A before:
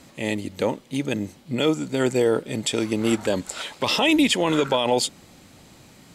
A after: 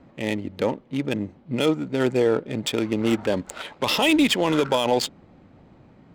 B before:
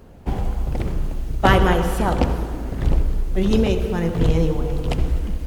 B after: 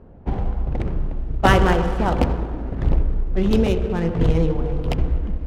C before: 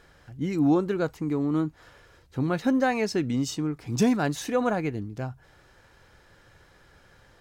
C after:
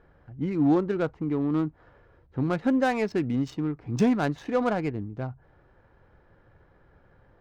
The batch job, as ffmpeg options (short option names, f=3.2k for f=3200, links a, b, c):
-af "adynamicsmooth=sensitivity=3.5:basefreq=1.3k"